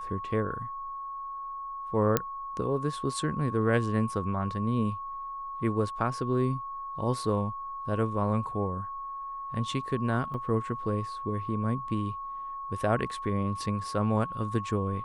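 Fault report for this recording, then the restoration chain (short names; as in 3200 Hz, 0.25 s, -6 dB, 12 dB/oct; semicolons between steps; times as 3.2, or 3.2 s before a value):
tone 1100 Hz -35 dBFS
2.17 pop -8 dBFS
10.34 gap 3.2 ms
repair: de-click; notch 1100 Hz, Q 30; interpolate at 10.34, 3.2 ms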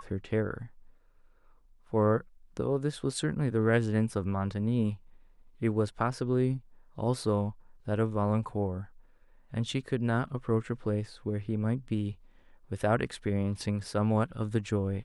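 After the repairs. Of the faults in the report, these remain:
none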